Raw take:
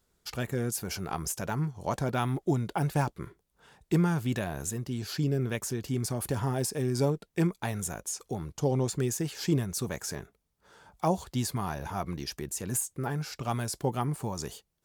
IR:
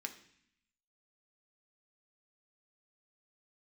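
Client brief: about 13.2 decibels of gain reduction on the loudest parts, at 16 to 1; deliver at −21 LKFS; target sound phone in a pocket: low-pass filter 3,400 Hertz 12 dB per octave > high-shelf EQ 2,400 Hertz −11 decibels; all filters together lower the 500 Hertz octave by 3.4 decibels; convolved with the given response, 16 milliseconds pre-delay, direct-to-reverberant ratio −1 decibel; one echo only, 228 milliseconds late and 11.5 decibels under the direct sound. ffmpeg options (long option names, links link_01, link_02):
-filter_complex "[0:a]equalizer=frequency=500:width_type=o:gain=-4,acompressor=threshold=-35dB:ratio=16,aecho=1:1:228:0.266,asplit=2[link_01][link_02];[1:a]atrim=start_sample=2205,adelay=16[link_03];[link_02][link_03]afir=irnorm=-1:irlink=0,volume=2.5dB[link_04];[link_01][link_04]amix=inputs=2:normalize=0,lowpass=3400,highshelf=frequency=2400:gain=-11,volume=18.5dB"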